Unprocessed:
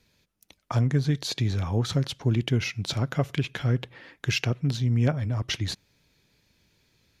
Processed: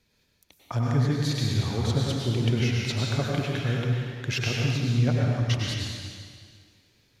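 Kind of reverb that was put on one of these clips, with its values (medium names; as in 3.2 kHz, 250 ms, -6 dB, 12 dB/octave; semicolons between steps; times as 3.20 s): plate-style reverb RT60 1.9 s, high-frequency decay 1×, pre-delay 85 ms, DRR -3 dB; trim -3.5 dB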